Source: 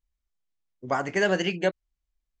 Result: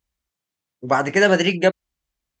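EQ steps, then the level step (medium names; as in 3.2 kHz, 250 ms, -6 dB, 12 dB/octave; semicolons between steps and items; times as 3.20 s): high-pass 78 Hz 12 dB/octave; +8.0 dB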